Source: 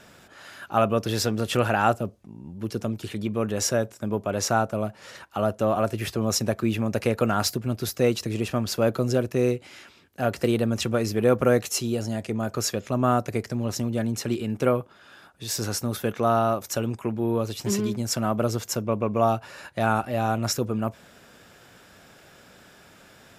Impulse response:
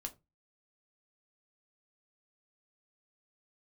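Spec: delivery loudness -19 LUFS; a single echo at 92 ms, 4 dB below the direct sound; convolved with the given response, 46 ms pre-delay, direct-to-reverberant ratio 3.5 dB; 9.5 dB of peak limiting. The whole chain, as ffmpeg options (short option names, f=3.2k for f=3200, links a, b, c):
-filter_complex "[0:a]alimiter=limit=-16dB:level=0:latency=1,aecho=1:1:92:0.631,asplit=2[a][b];[1:a]atrim=start_sample=2205,adelay=46[c];[b][c]afir=irnorm=-1:irlink=0,volume=-1dB[d];[a][d]amix=inputs=2:normalize=0,volume=6.5dB"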